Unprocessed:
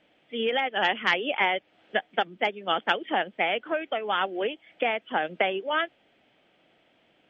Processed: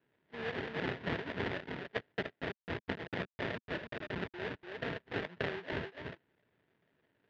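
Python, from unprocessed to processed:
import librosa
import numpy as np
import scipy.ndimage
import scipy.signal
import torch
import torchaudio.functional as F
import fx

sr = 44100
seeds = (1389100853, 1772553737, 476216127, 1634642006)

y = fx.delta_hold(x, sr, step_db=-22.0, at=(2.12, 4.34))
y = y + 10.0 ** (-5.5 / 20.0) * np.pad(y, (int(292 * sr / 1000.0), 0))[:len(y)]
y = fx.sample_hold(y, sr, seeds[0], rate_hz=1200.0, jitter_pct=20)
y = fx.cabinet(y, sr, low_hz=110.0, low_slope=12, high_hz=3400.0, hz=(220.0, 310.0, 540.0, 770.0, 1800.0), db=(-5, -6, -7, -9, 3))
y = F.gain(torch.from_numpy(y), -8.5).numpy()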